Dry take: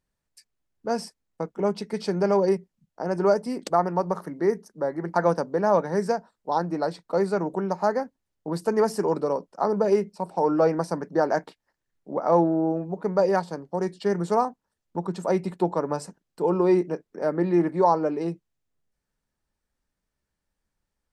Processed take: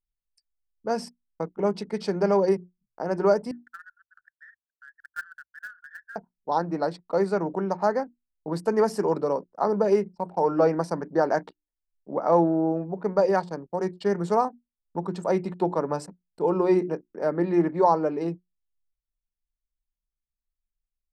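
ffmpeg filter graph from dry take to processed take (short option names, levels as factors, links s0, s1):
-filter_complex "[0:a]asettb=1/sr,asplit=3[s0][s1][s2];[s0]atrim=end=3.514[s3];[s1]atrim=start=3.51:end=6.16,asetpts=PTS-STARTPTS,afade=t=in:d=0.004:c=qsin,afade=t=out:st=2.646:d=0.004:c=qsin,asuperpass=centerf=1600:order=8:qfactor=3.8,acrusher=bits=3:mode=log:mix=0:aa=0.000001[s4];[s2]atrim=start=6.156[s5];[s3][s4]acrossfade=d=0.004:c1=hsin:c2=qsin[s6];[s6][s5]acrossfade=d=0.004:c1=qsin:c2=hsin,bandreject=f=60:t=h:w=6,bandreject=f=120:t=h:w=6,bandreject=f=180:t=h:w=6,bandreject=f=240:t=h:w=6,bandreject=f=300:t=h:w=6,bandreject=f=360:t=h:w=6,anlmdn=0.0398,highshelf=f=7200:g=-5.5"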